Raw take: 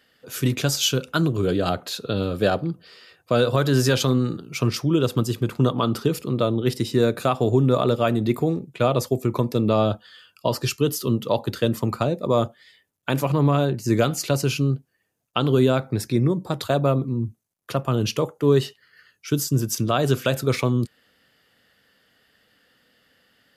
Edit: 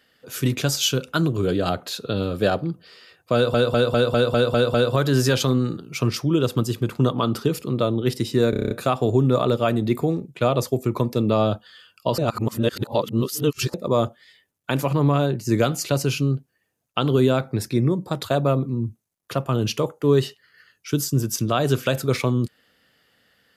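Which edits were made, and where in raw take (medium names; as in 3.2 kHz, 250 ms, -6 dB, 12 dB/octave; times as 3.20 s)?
3.34 s: stutter 0.20 s, 8 plays
7.10 s: stutter 0.03 s, 8 plays
10.57–12.13 s: reverse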